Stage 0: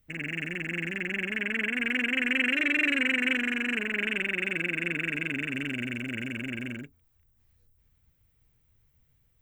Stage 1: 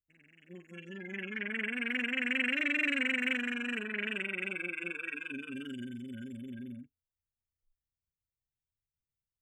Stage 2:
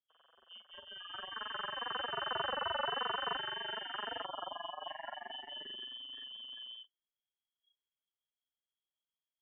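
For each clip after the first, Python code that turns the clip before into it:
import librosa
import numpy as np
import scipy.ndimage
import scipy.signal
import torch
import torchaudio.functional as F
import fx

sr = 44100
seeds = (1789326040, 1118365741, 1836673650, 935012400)

y1 = fx.noise_reduce_blind(x, sr, reduce_db=24)
y1 = F.gain(torch.from_numpy(y1), -5.0).numpy()
y2 = fx.spec_erase(y1, sr, start_s=4.26, length_s=0.62, low_hz=380.0, high_hz=1600.0)
y2 = fx.freq_invert(y2, sr, carrier_hz=3300)
y2 = F.gain(torch.from_numpy(y2), -5.0).numpy()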